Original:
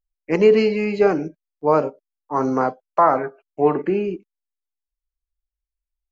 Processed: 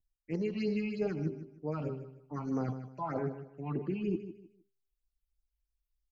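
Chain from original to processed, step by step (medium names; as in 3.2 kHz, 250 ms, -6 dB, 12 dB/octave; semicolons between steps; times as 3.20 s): de-hum 132.9 Hz, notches 3; spectral replace 2.87–3.07 s, 1.1–2.4 kHz both; graphic EQ 125/500/1000 Hz +8/-4/-10 dB; reverse; compression 5:1, threshold -31 dBFS, peak gain reduction 16.5 dB; reverse; phase shifter stages 6, 3.2 Hz, lowest notch 420–3100 Hz; vibrato 1.3 Hz 32 cents; on a send: feedback delay 154 ms, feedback 27%, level -12 dB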